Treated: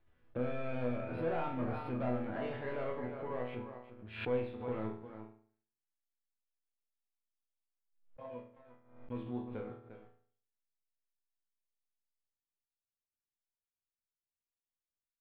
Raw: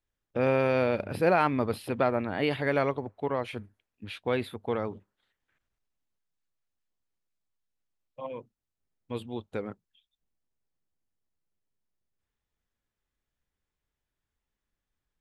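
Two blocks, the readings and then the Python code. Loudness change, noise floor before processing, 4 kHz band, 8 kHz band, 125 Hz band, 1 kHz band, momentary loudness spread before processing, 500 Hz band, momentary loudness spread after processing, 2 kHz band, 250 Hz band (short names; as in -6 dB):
-10.5 dB, under -85 dBFS, -13.5 dB, n/a, -7.0 dB, -11.5 dB, 16 LU, -10.0 dB, 15 LU, -13.0 dB, -7.5 dB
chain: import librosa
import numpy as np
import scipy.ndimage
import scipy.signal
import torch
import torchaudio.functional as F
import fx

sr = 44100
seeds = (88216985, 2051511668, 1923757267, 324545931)

p1 = x + fx.echo_single(x, sr, ms=351, db=-11.5, dry=0)
p2 = fx.leveller(p1, sr, passes=3)
p3 = fx.level_steps(p2, sr, step_db=12)
p4 = p2 + (p3 * librosa.db_to_amplitude(-3.0))
p5 = fx.air_absorb(p4, sr, metres=490.0)
p6 = fx.resonator_bank(p5, sr, root=40, chord='sus4', decay_s=0.53)
p7 = fx.pre_swell(p6, sr, db_per_s=97.0)
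y = p7 * librosa.db_to_amplitude(-5.0)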